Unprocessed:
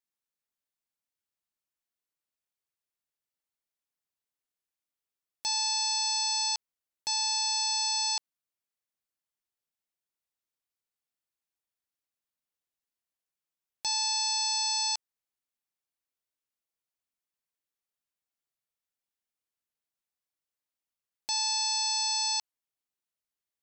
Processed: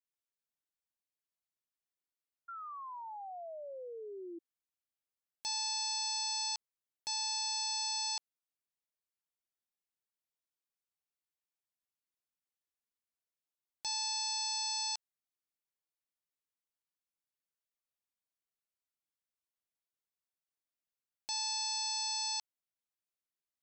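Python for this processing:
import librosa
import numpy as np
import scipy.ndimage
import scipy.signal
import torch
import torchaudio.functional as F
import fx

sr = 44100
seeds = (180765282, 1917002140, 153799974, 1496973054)

y = fx.spec_paint(x, sr, seeds[0], shape='fall', start_s=2.48, length_s=1.91, low_hz=330.0, high_hz=1400.0, level_db=-38.0)
y = fx.low_shelf(y, sr, hz=120.0, db=10.0, at=(7.77, 8.17))
y = y * librosa.db_to_amplitude(-7.0)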